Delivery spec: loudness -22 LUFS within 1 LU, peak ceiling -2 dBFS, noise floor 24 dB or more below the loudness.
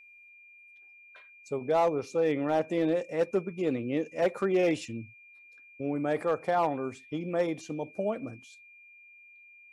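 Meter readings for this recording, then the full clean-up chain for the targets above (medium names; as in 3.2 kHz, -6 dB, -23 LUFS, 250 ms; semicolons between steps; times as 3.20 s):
clipped samples 0.5%; clipping level -19.0 dBFS; steady tone 2.4 kHz; tone level -52 dBFS; loudness -30.0 LUFS; peak level -19.0 dBFS; loudness target -22.0 LUFS
-> clip repair -19 dBFS; band-stop 2.4 kHz, Q 30; trim +8 dB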